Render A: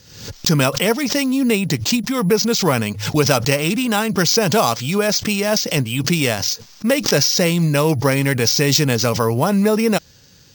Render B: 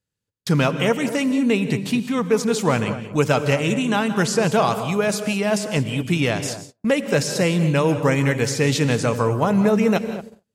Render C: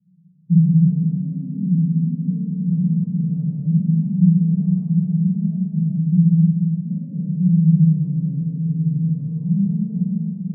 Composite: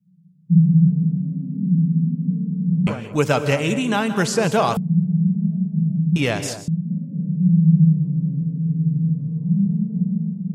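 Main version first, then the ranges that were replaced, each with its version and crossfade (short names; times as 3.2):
C
2.87–4.77 from B
6.16–6.68 from B
not used: A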